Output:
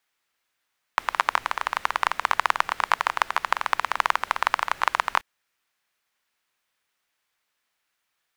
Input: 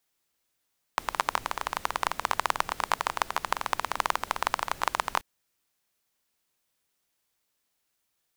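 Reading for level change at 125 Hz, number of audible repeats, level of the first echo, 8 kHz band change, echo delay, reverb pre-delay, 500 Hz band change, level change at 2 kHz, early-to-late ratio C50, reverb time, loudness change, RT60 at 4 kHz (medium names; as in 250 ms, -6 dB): no reading, no echo, no echo, -2.0 dB, no echo, no reverb, +0.5 dB, +7.0 dB, no reverb, no reverb, +5.0 dB, no reverb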